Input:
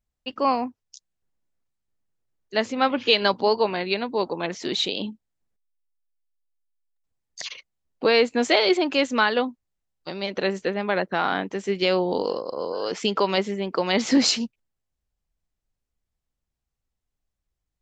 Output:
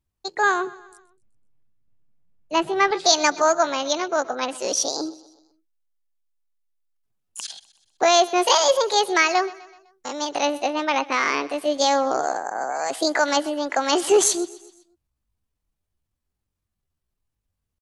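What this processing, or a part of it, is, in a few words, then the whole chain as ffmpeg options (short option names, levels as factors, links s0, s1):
chipmunk voice: -filter_complex "[0:a]asetrate=66075,aresample=44100,atempo=0.66742,asettb=1/sr,asplit=3[s0][s1][s2];[s0]atrim=end=0.674[s3];[s1]atrim=start=0.67:end=2.91,asetpts=PTS-STARTPTS,afade=t=in:d=0.004:c=qsin,afade=t=out:st=2.236:d=0.004:c=qsin,bass=f=250:g=13,treble=f=4000:g=-10[s4];[s2]atrim=start=2.906[s5];[s3][s4]acrossfade=d=0.004:c1=hsin:c2=qsin[s6];[s6][s5]acrossfade=d=0.004:c1=qsin:c2=hsin,aecho=1:1:126|252|378|504:0.1|0.05|0.025|0.0125,volume=1.26"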